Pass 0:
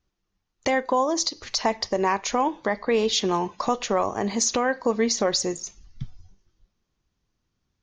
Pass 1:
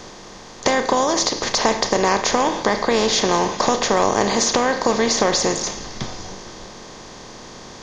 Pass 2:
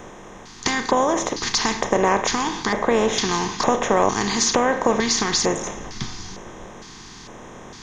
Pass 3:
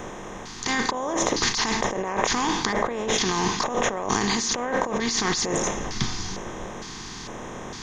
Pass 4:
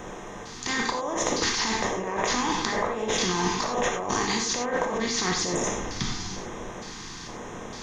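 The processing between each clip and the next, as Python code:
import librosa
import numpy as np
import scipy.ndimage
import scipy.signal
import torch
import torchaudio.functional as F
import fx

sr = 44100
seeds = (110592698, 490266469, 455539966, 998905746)

y1 = fx.bin_compress(x, sr, power=0.4)
y2 = fx.filter_lfo_notch(y1, sr, shape='square', hz=1.1, low_hz=570.0, high_hz=4600.0, q=0.72)
y3 = fx.over_compress(y2, sr, threshold_db=-25.0, ratio=-1.0)
y4 = fx.rev_gated(y3, sr, seeds[0], gate_ms=120, shape='flat', drr_db=1.5)
y4 = y4 * librosa.db_to_amplitude(-4.0)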